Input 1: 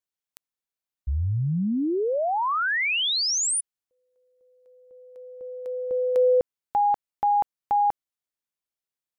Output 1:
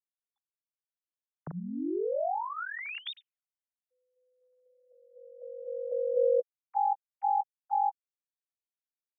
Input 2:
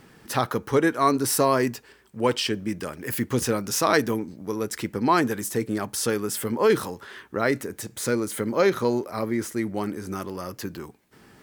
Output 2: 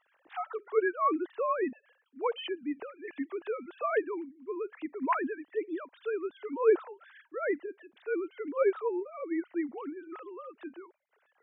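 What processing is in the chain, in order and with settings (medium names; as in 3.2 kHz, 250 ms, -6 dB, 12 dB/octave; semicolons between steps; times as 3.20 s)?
formants replaced by sine waves; trim -8 dB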